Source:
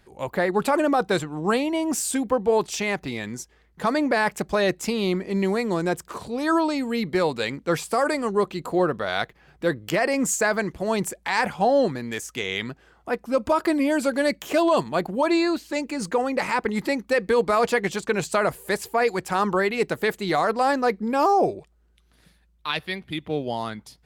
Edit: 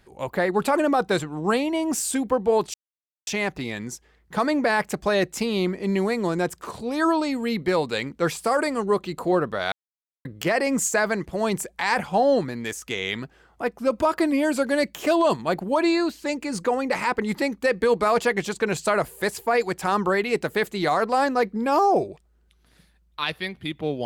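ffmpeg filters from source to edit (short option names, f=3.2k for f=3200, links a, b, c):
-filter_complex "[0:a]asplit=4[a][b][c][d];[a]atrim=end=2.74,asetpts=PTS-STARTPTS,afade=t=out:st=2.736:d=0.004:c=hsin,apad=pad_dur=0.53[e];[b]atrim=start=2.74:end=9.19,asetpts=PTS-STARTPTS,afade=t=in:d=0.004:c=hsin,afade=t=out:st=6.446:d=0.004:c=hsin[f];[c]atrim=start=9.19:end=9.72,asetpts=PTS-STARTPTS,volume=0[g];[d]atrim=start=9.72,asetpts=PTS-STARTPTS,afade=t=in:d=0.004:c=hsin[h];[e][f][g][h]concat=n=4:v=0:a=1"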